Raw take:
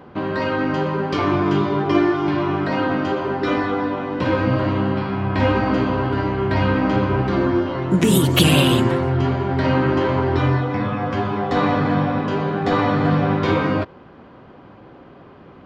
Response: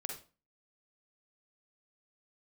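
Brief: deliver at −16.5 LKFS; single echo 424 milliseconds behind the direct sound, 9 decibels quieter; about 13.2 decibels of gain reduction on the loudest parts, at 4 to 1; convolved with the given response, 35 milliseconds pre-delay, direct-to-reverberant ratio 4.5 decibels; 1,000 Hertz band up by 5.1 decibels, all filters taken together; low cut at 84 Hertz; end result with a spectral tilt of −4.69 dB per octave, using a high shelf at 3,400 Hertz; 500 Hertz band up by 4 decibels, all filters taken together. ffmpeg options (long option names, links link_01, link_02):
-filter_complex "[0:a]highpass=84,equalizer=frequency=500:width_type=o:gain=4,equalizer=frequency=1000:width_type=o:gain=4.5,highshelf=frequency=3400:gain=6.5,acompressor=threshold=-25dB:ratio=4,aecho=1:1:424:0.355,asplit=2[link_01][link_02];[1:a]atrim=start_sample=2205,adelay=35[link_03];[link_02][link_03]afir=irnorm=-1:irlink=0,volume=-4dB[link_04];[link_01][link_04]amix=inputs=2:normalize=0,volume=9dB"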